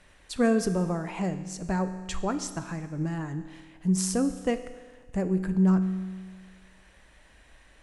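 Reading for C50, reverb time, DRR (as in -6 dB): 11.5 dB, 1.5 s, 9.5 dB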